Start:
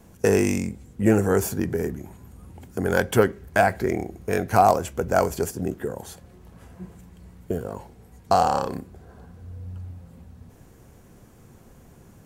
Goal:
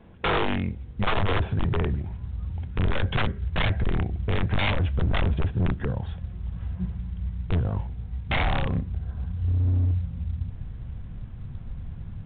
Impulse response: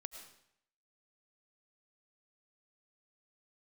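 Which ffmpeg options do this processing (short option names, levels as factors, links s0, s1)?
-af "aeval=exprs='(mod(6.31*val(0)+1,2)-1)/6.31':c=same,asubboost=boost=11.5:cutoff=110,volume=9.44,asoftclip=hard,volume=0.106" -ar 8000 -c:a pcm_mulaw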